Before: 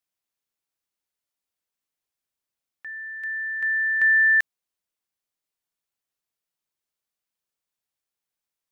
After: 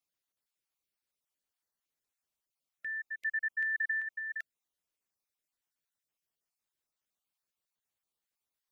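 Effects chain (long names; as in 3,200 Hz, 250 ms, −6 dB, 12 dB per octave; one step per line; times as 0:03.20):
time-frequency cells dropped at random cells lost 29%
compressor whose output falls as the input rises −27 dBFS, ratio −1
level −6.5 dB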